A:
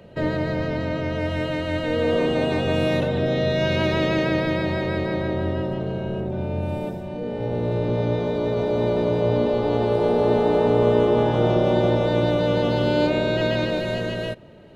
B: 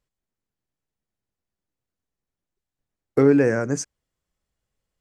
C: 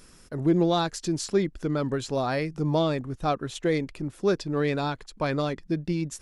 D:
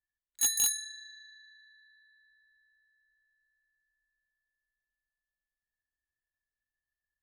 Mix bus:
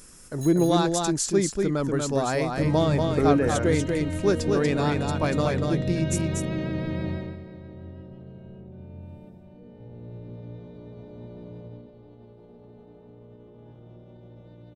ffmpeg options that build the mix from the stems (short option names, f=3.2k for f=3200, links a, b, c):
-filter_complex "[0:a]alimiter=limit=-13dB:level=0:latency=1:release=36,acrossover=split=280[a][b];[b]acompressor=threshold=-55dB:ratio=1.5[c];[a][c]amix=inputs=2:normalize=0,adelay=2400,volume=-1.5dB,afade=t=out:st=7.1:d=0.27:silence=0.223872,afade=t=out:st=11.62:d=0.29:silence=0.421697,asplit=2[d][e];[e]volume=-16.5dB[f];[1:a]lowpass=3.9k,volume=-6dB[g];[2:a]highshelf=f=5.6k:t=q:w=1.5:g=6,volume=1dB,asplit=2[h][i];[i]volume=-4dB[j];[3:a]volume=-15dB[k];[f][j]amix=inputs=2:normalize=0,aecho=0:1:239:1[l];[d][g][h][k][l]amix=inputs=5:normalize=0"